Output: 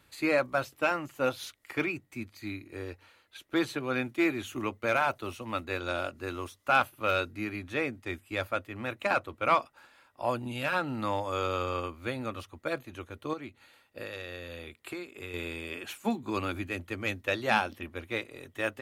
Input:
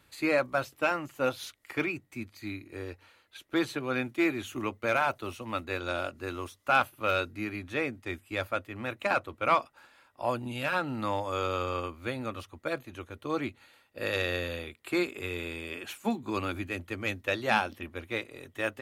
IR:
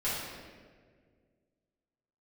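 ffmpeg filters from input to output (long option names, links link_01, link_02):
-filter_complex "[0:a]asettb=1/sr,asplit=3[link_01][link_02][link_03];[link_01]atrim=end=13.334[link_04];[link_02]atrim=start=13.33:end=15.34,asetpts=PTS-STARTPTS,afade=type=in:duration=0.004:curve=qsin,afade=type=out:start_time=2.006:duration=0.004:curve=qsin,acompressor=threshold=-38dB:ratio=5[link_05];[link_03]atrim=start=15.336[link_06];[link_04][link_05]acrossfade=duration=0.004:curve1=hsin:curve2=qsin[link_07];[link_07][link_06]acrossfade=duration=0.004:curve1=qsin:curve2=hsin"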